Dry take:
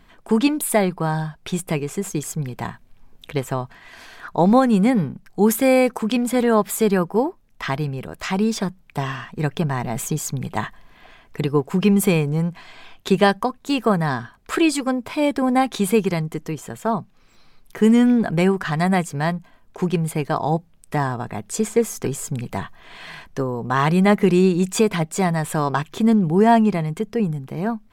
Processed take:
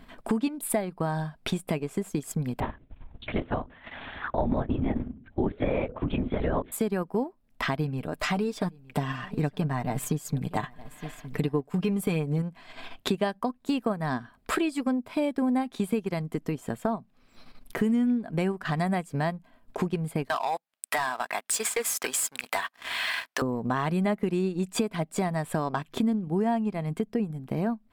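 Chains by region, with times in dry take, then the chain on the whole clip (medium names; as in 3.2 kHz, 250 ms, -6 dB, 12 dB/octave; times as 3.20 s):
2.60–6.72 s: gate with hold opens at -38 dBFS, closes at -40 dBFS + hum notches 50/100/150/200/250/300/350/400/450/500 Hz + LPC vocoder at 8 kHz whisper
7.77–12.42 s: comb 6.7 ms, depth 53% + delay 915 ms -21.5 dB
20.29–23.42 s: high-pass 1.2 kHz + waveshaping leveller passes 3
whole clip: graphic EQ with 31 bands 250 Hz +8 dB, 630 Hz +5 dB, 6.3 kHz -6 dB; transient shaper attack +1 dB, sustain -8 dB; compression 4:1, threshold -28 dBFS; trim +1.5 dB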